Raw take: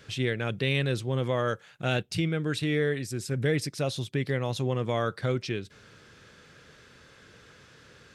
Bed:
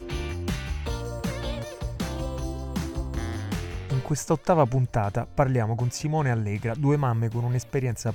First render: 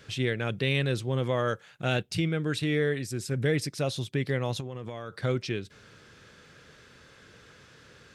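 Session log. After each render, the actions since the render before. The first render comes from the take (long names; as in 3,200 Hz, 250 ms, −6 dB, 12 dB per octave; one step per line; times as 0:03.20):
0:04.60–0:05.24: downward compressor 12 to 1, threshold −32 dBFS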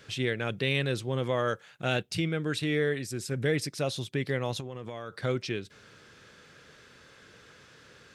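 low-shelf EQ 160 Hz −5.5 dB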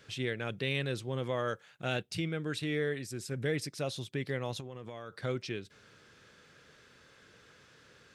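level −5 dB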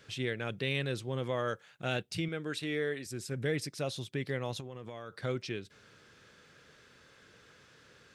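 0:02.28–0:03.06: parametric band 87 Hz −12 dB 1.4 octaves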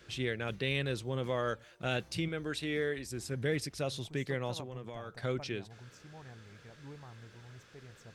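mix in bed −27 dB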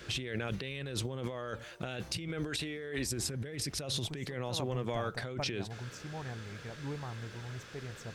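in parallel at −2 dB: brickwall limiter −28 dBFS, peak gain reduction 10 dB
on the sum: compressor whose output falls as the input rises −37 dBFS, ratio −1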